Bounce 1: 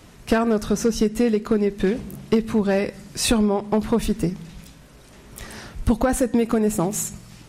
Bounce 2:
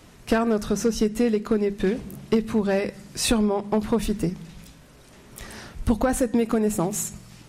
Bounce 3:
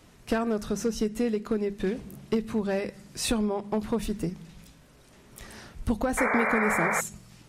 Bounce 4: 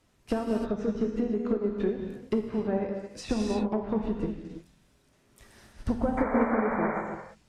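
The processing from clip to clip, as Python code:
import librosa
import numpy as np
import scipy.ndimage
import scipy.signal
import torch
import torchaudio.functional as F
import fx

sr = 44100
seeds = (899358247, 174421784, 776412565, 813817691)

y1 = fx.hum_notches(x, sr, base_hz=50, count=4)
y1 = F.gain(torch.from_numpy(y1), -2.0).numpy()
y2 = fx.spec_paint(y1, sr, seeds[0], shape='noise', start_s=6.17, length_s=0.84, low_hz=400.0, high_hz=2400.0, level_db=-21.0)
y2 = F.gain(torch.from_numpy(y2), -5.5).numpy()
y3 = fx.env_lowpass_down(y2, sr, base_hz=970.0, full_db=-23.0)
y3 = fx.rev_gated(y3, sr, seeds[1], gate_ms=360, shape='flat', drr_db=1.0)
y3 = fx.upward_expand(y3, sr, threshold_db=-46.0, expansion=1.5)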